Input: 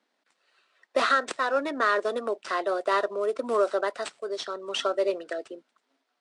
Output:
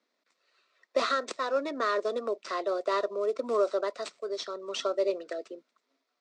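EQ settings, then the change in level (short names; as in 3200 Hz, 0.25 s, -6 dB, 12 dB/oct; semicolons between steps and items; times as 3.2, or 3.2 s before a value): dynamic EQ 1700 Hz, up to -4 dB, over -40 dBFS, Q 1.5; speaker cabinet 200–7200 Hz, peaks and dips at 820 Hz -10 dB, 1600 Hz -7 dB, 3000 Hz -7 dB; bell 300 Hz -2.5 dB 0.77 oct; 0.0 dB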